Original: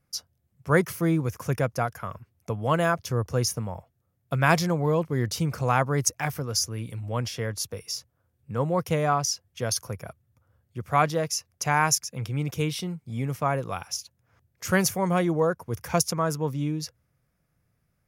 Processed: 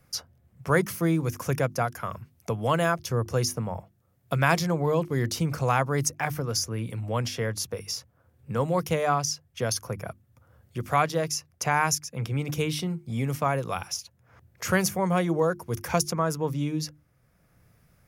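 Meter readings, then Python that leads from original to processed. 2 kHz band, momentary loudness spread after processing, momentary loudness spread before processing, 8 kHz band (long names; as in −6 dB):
−0.5 dB, 11 LU, 12 LU, −2.0 dB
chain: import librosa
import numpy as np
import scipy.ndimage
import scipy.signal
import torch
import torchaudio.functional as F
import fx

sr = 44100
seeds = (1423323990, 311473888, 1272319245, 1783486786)

y = fx.hum_notches(x, sr, base_hz=50, count=7)
y = fx.band_squash(y, sr, depth_pct=40)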